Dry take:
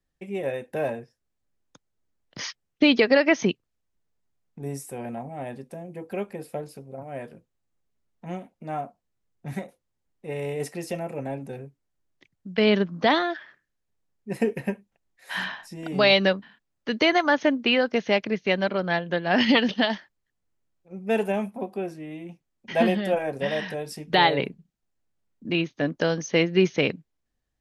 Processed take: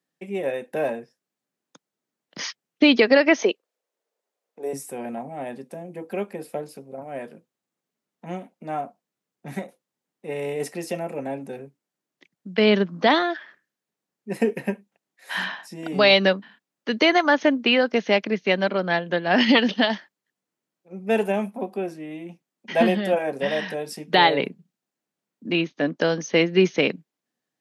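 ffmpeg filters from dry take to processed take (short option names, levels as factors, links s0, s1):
-filter_complex "[0:a]asettb=1/sr,asplit=3[s0][s1][s2];[s0]atrim=end=3.384[s3];[s1]atrim=start=3.38:end=4.73,asetpts=PTS-STARTPTS,afade=t=in:d=0.004:c=qsin,afade=t=out:st=1.346:d=0.004:c=qsin,highpass=f=500:t=q:w=3.1[s4];[s2]atrim=start=4.726[s5];[s3][s4]acrossfade=d=0.004:c1=hsin:c2=qsin[s6];[s6][s5]acrossfade=d=0.004:c1=qsin:c2=hsin,asettb=1/sr,asplit=3[s7][s8][s9];[s7]atrim=end=25.614[s10];[s8]atrim=start=25.61:end=26.41,asetpts=PTS-STARTPTS,afade=t=in:d=0.004:c=qsin,afade=t=out:st=0.796:d=0.004:c=qsin,lowpass=7100[s11];[s9]atrim=start=26.406[s12];[s10][s11]acrossfade=d=0.004:c1=hsin:c2=qsin[s13];[s13][s12]acrossfade=d=0.004:c1=qsin:c2=hsin,highpass=f=170:w=0.5412,highpass=f=170:w=1.3066,volume=1.33"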